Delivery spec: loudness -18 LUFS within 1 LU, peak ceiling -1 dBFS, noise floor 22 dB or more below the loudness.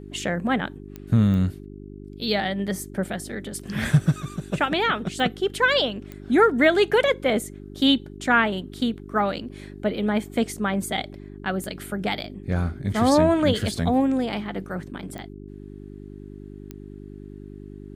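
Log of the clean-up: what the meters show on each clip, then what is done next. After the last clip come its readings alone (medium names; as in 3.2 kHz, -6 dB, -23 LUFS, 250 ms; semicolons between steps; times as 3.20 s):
clicks found 7; hum 50 Hz; highest harmonic 400 Hz; hum level -39 dBFS; loudness -23.5 LUFS; peak level -5.5 dBFS; loudness target -18.0 LUFS
-> de-click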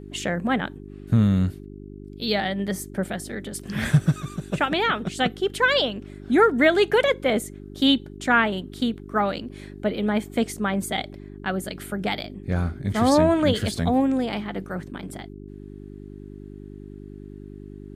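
clicks found 0; hum 50 Hz; highest harmonic 400 Hz; hum level -39 dBFS
-> de-hum 50 Hz, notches 8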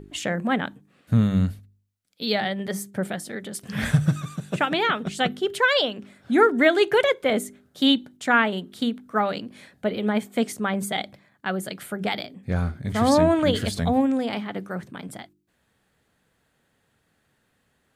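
hum not found; loudness -24.0 LUFS; peak level -5.5 dBFS; loudness target -18.0 LUFS
-> trim +6 dB; peak limiter -1 dBFS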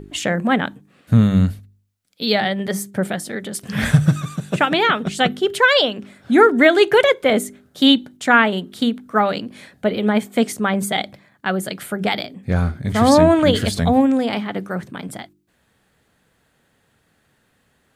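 loudness -18.0 LUFS; peak level -1.0 dBFS; noise floor -64 dBFS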